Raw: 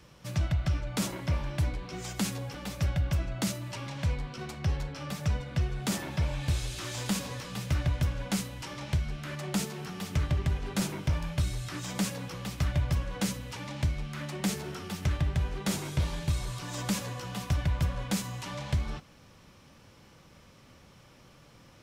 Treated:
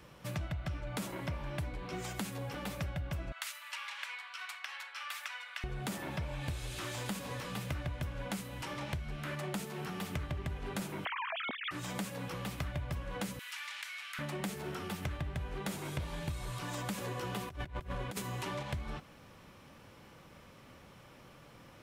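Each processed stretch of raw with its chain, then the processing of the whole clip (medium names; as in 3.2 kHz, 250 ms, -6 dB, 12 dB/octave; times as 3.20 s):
3.32–5.64 s: high-pass 1.1 kHz 24 dB/octave + dynamic bell 2.5 kHz, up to +4 dB, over -51 dBFS, Q 0.85
11.05–11.71 s: formants replaced by sine waves + compression 3:1, threshold -30 dBFS
13.39–14.19 s: high-pass 1.4 kHz 24 dB/octave + level flattener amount 50%
16.98–18.63 s: peaking EQ 380 Hz +12.5 dB 0.25 oct + compressor with a negative ratio -33 dBFS, ratio -0.5
whole clip: bass shelf 210 Hz -5.5 dB; compression, threshold -37 dBFS; peaking EQ 5.6 kHz -7.5 dB 1.3 oct; trim +2.5 dB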